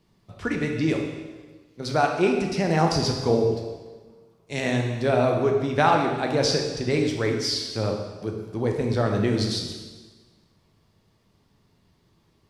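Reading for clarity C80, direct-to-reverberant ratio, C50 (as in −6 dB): 5.5 dB, 1.5 dB, 4.0 dB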